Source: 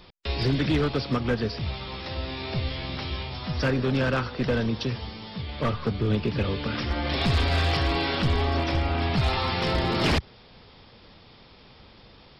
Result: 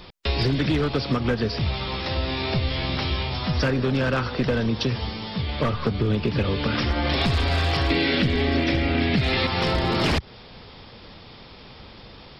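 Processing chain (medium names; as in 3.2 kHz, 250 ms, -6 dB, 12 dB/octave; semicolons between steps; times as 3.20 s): 7.90–9.47 s: ten-band graphic EQ 125 Hz +4 dB, 250 Hz +10 dB, 500 Hz +6 dB, 1 kHz -7 dB, 2 kHz +10 dB, 4 kHz +5 dB; compression 6:1, threshold -26 dBFS, peak gain reduction 12.5 dB; trim +7 dB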